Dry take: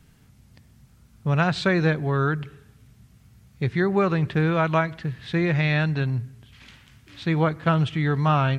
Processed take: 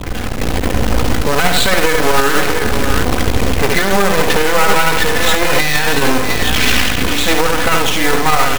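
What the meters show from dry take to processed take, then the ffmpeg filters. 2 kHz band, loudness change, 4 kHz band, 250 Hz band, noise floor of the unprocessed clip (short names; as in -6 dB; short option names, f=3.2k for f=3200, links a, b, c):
+14.0 dB, +9.5 dB, +20.5 dB, +6.5 dB, -56 dBFS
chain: -af "aeval=exprs='val(0)+0.5*0.0596*sgn(val(0))':c=same,lowpass=f=4.6k:w=0.5412,lowpass=f=4.6k:w=1.3066,afftdn=nr=30:nf=-38,equalizer=f=160:t=o:w=0.98:g=-11.5,aecho=1:1:4:0.87,adynamicequalizer=threshold=0.00631:dfrequency=410:dqfactor=7.2:tfrequency=410:tqfactor=7.2:attack=5:release=100:ratio=0.375:range=2:mode=boostabove:tftype=bell,dynaudnorm=f=240:g=5:m=14dB,aeval=exprs='max(val(0),0)':c=same,aecho=1:1:73|174|639|701:0.501|0.178|0.126|0.251,acrusher=bits=2:mode=log:mix=0:aa=0.000001,aeval=exprs='val(0)+0.00891*(sin(2*PI*60*n/s)+sin(2*PI*2*60*n/s)/2+sin(2*PI*3*60*n/s)/3+sin(2*PI*4*60*n/s)/4+sin(2*PI*5*60*n/s)/5)':c=same,alimiter=level_in=13.5dB:limit=-1dB:release=50:level=0:latency=1,volume=-1dB"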